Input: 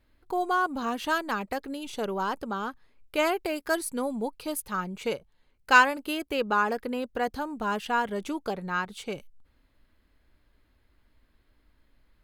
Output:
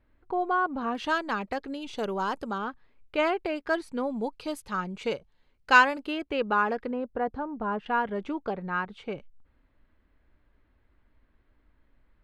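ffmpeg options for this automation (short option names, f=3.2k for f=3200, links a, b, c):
-af "asetnsamples=n=441:p=0,asendcmd='0.95 lowpass f 5000;1.98 lowpass f 8300;2.58 lowpass f 3300;4.16 lowpass f 5700;6.07 lowpass f 3200;6.91 lowpass f 1300;7.86 lowpass f 2300',lowpass=2.1k"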